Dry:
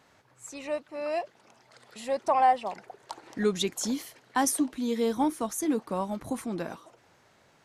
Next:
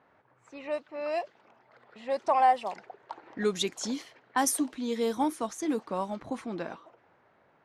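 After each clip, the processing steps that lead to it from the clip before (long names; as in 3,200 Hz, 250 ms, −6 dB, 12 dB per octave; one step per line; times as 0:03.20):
low-shelf EQ 190 Hz −8.5 dB
low-pass that shuts in the quiet parts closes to 1,600 Hz, open at −24.5 dBFS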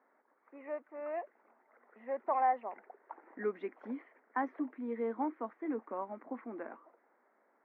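Chebyshev band-pass filter 230–2,100 Hz, order 4
level −6.5 dB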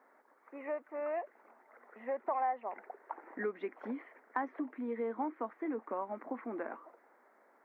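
downward compressor 2.5 to 1, threshold −41 dBFS, peak gain reduction 10.5 dB
parametric band 160 Hz −3.5 dB 2.1 octaves
level +6.5 dB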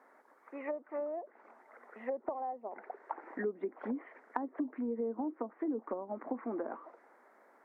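treble cut that deepens with the level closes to 480 Hz, closed at −34 dBFS
level +3 dB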